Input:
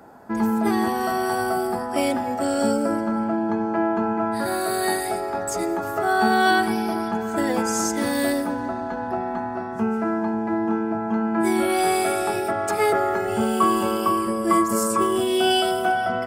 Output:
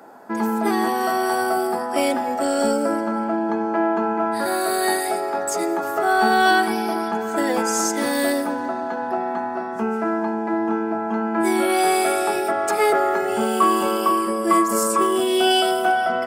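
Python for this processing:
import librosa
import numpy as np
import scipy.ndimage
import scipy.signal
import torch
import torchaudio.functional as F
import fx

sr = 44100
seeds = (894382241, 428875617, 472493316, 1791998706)

p1 = scipy.signal.sosfilt(scipy.signal.butter(2, 270.0, 'highpass', fs=sr, output='sos'), x)
p2 = 10.0 ** (-15.5 / 20.0) * np.tanh(p1 / 10.0 ** (-15.5 / 20.0))
y = p1 + (p2 * librosa.db_to_amplitude(-7.0))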